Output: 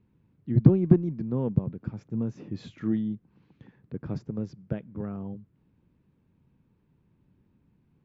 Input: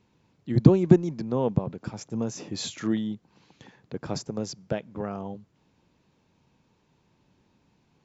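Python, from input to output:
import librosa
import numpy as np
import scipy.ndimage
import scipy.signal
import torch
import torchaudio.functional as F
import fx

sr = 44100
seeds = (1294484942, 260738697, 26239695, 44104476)

p1 = scipy.signal.sosfilt(scipy.signal.butter(2, 1300.0, 'lowpass', fs=sr, output='sos'), x)
p2 = fx.peak_eq(p1, sr, hz=760.0, db=-15.0, octaves=2.0)
p3 = 10.0 ** (-19.0 / 20.0) * np.tanh(p2 / 10.0 ** (-19.0 / 20.0))
y = p2 + F.gain(torch.from_numpy(p3), -5.0).numpy()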